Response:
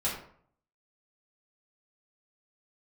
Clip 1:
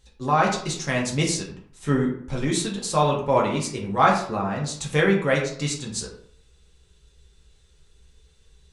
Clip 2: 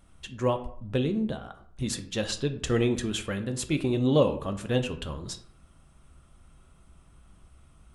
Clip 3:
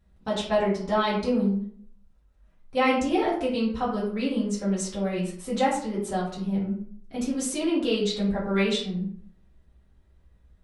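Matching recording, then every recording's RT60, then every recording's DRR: 3; 0.60, 0.60, 0.60 seconds; −2.5, 7.0, −8.0 decibels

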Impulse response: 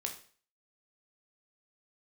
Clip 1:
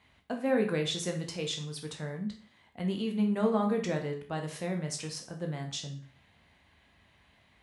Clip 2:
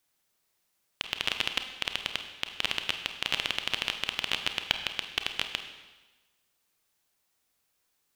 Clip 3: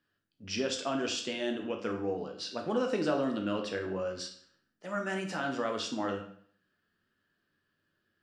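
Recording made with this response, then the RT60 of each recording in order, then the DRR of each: 1; 0.45, 1.2, 0.55 seconds; 2.5, 6.5, 2.5 decibels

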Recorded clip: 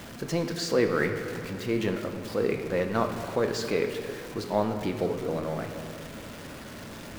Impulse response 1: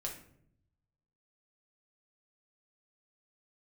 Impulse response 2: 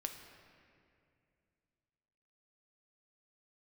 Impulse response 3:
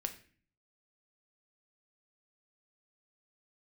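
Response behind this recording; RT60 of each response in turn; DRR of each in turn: 2; 0.65, 2.4, 0.45 seconds; −1.0, 4.5, 5.5 decibels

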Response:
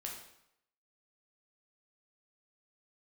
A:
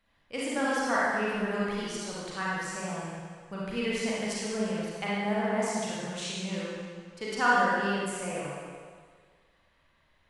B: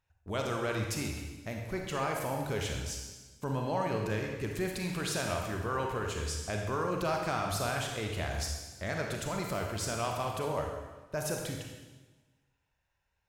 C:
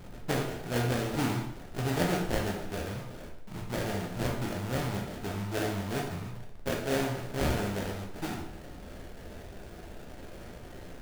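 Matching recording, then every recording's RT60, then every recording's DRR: C; 1.8, 1.3, 0.75 seconds; −7.5, 1.0, −1.5 decibels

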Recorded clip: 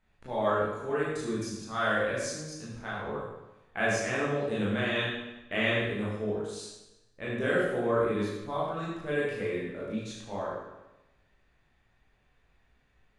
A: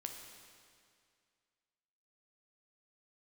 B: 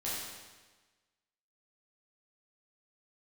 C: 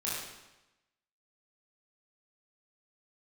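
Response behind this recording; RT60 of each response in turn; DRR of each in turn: C; 2.2, 1.3, 1.0 seconds; 3.0, −8.5, −8.0 decibels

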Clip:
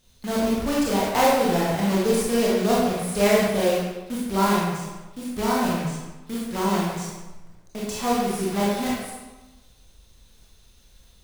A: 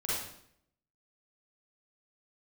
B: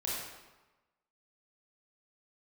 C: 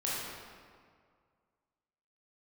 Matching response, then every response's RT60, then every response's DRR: B; 0.70, 1.1, 2.0 seconds; −9.0, −6.5, −7.5 decibels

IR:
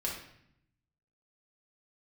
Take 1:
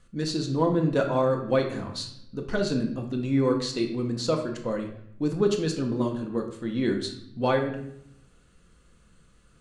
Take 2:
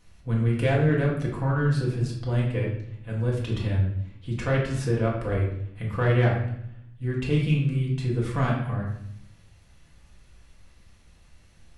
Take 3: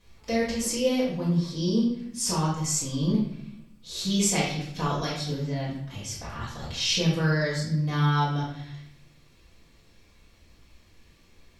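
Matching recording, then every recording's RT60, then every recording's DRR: 2; 0.70, 0.70, 0.70 seconds; 2.5, −4.0, −11.0 decibels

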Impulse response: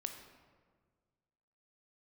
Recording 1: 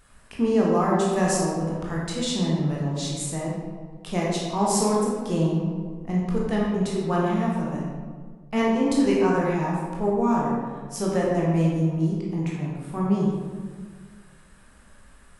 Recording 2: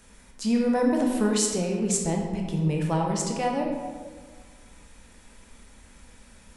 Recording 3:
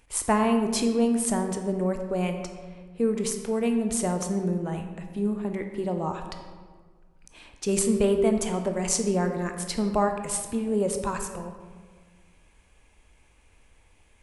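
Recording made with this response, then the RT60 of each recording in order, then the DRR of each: 3; 1.6, 1.6, 1.6 seconds; −4.5, 0.0, 5.0 decibels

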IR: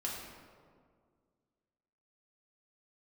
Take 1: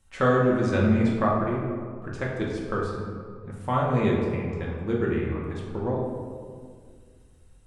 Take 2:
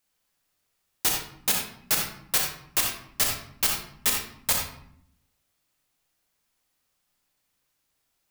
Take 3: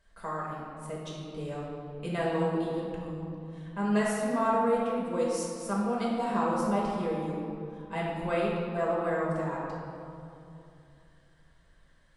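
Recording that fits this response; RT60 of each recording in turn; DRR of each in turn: 1; 2.0, 0.70, 2.8 seconds; −4.0, 0.0, −6.0 decibels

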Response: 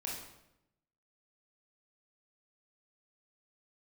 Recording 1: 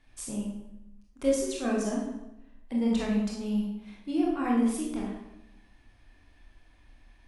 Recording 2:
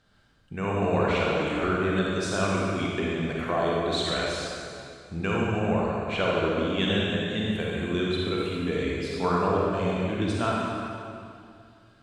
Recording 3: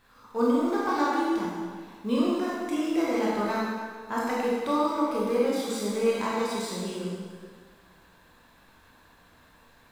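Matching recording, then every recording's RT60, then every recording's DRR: 1; 0.85, 2.4, 1.7 seconds; −3.5, −4.5, −6.5 decibels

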